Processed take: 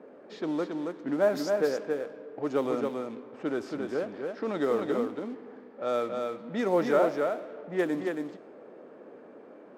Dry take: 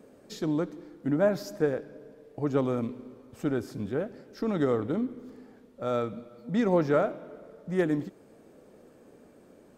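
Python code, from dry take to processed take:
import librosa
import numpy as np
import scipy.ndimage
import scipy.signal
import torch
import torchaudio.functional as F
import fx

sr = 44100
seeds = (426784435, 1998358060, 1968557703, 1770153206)

p1 = fx.law_mismatch(x, sr, coded='mu')
p2 = scipy.signal.sosfilt(scipy.signal.butter(2, 320.0, 'highpass', fs=sr, output='sos'), p1)
p3 = fx.env_lowpass(p2, sr, base_hz=1600.0, full_db=-23.5)
y = p3 + fx.echo_single(p3, sr, ms=275, db=-4.0, dry=0)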